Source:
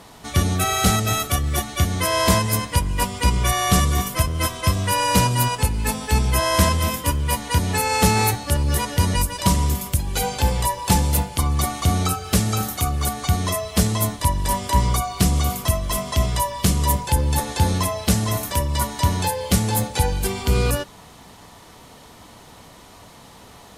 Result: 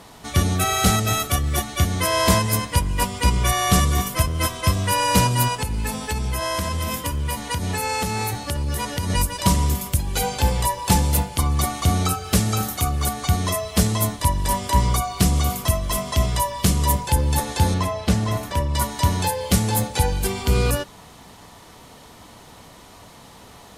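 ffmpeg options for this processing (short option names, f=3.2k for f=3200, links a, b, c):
-filter_complex "[0:a]asettb=1/sr,asplit=3[a][b][c];[a]atrim=end=5.524[d];[b]atrim=start=5.52:end=9.1,asetpts=PTS-STARTPTS,afade=t=in:d=0.004:c=qsin,afade=t=out:st=3.576:d=0.004:c=qsin,acompressor=threshold=-20dB:ratio=10:attack=3.2:release=140:knee=1:detection=peak[e];[c]atrim=start=9.096[f];[d][e]acrossfade=d=0.004:c1=hsin:c2=qsin[g];[g][f]acrossfade=d=0.004:c1=qsin:c2=hsin,asettb=1/sr,asplit=3[h][i][j];[h]atrim=end=17.744[k];[i]atrim=start=17.74:end=18.75,asetpts=PTS-STARTPTS,afade=t=in:d=0.004:c=qsin,afade=t=out:st=1.006:d=0.004:c=qsin,aemphasis=mode=reproduction:type=50kf[l];[j]atrim=start=18.746[m];[k][l]acrossfade=d=0.004:c1=hsin:c2=qsin[n];[n][m]acrossfade=d=0.004:c1=qsin:c2=hsin"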